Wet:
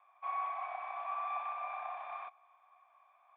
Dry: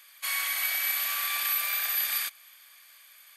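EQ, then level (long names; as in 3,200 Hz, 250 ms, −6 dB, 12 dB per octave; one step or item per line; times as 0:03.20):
formant resonators in series a
low-shelf EQ 470 Hz −3.5 dB
+14.5 dB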